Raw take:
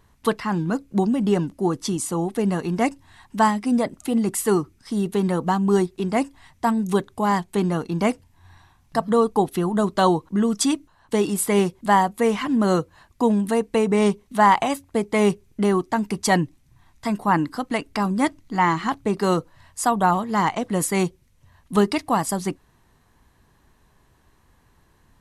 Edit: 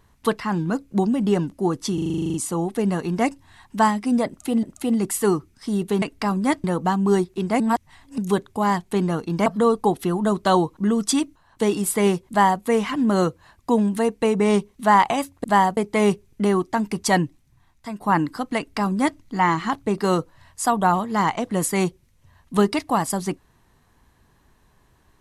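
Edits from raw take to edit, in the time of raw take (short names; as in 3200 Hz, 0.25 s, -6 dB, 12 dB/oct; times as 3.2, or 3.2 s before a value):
1.94 stutter 0.04 s, 11 plays
3.87–4.23 loop, 2 plays
6.22–6.8 reverse
8.08–8.98 cut
11.81–12.14 copy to 14.96
16.35–17.2 fade out, to -10 dB
17.76–18.38 copy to 5.26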